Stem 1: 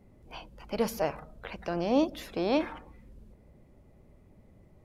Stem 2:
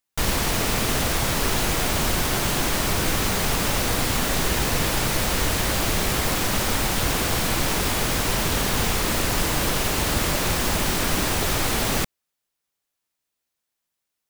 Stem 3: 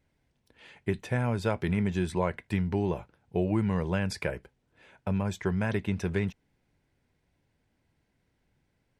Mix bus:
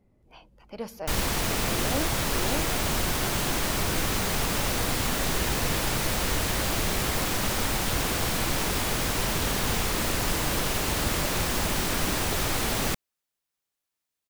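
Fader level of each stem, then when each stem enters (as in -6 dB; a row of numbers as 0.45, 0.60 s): -7.0 dB, -4.0 dB, off; 0.00 s, 0.90 s, off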